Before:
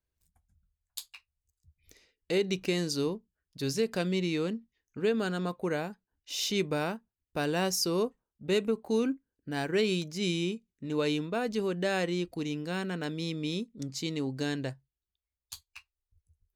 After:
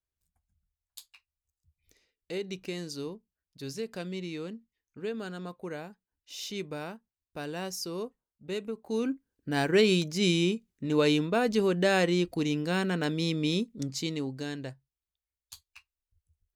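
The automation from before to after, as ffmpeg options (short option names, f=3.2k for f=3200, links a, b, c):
-af "volume=5dB,afade=t=in:st=8.79:d=0.8:silence=0.251189,afade=t=out:st=13.65:d=0.77:silence=0.354813"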